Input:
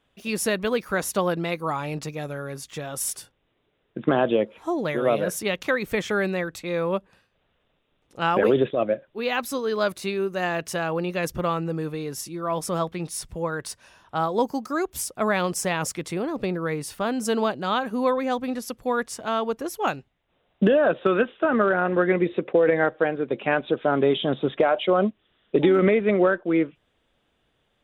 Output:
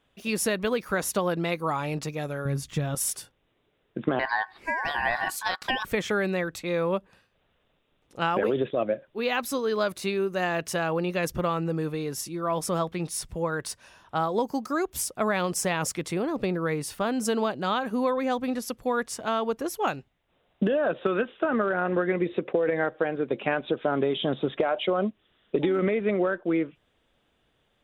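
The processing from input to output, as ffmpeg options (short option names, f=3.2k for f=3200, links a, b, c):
-filter_complex "[0:a]asettb=1/sr,asplit=3[a][b][c];[a]atrim=end=2.454[d];[b]atrim=start=2.45:end=2.95,asetpts=PTS-STARTPTS,afade=t=in:d=0.004:c=qsin,afade=t=out:st=0.496:d=0.004:c=qsin,bass=f=250:g=13,treble=f=4k:g=-1[e];[c]atrim=start=2.946[f];[d][e]acrossfade=d=0.004:c1=hsin:c2=qsin[g];[g][f]acrossfade=d=0.004:c1=qsin:c2=hsin,asettb=1/sr,asplit=3[h][i][j];[h]atrim=end=4.194[k];[i]atrim=start=4.19:end=5.85,asetpts=PTS-STARTPTS,afade=t=in:d=0.004:c=qsin,afade=t=out:st=1.656:d=0.004:c=qsin,aeval=exprs='val(0)*sin(2*PI*1300*n/s)':c=same[l];[j]atrim=start=5.846[m];[k][l]acrossfade=d=0.004:c1=hsin:c2=qsin[n];[n][m]acrossfade=d=0.004:c1=qsin:c2=hsin,acompressor=threshold=-21dB:ratio=6"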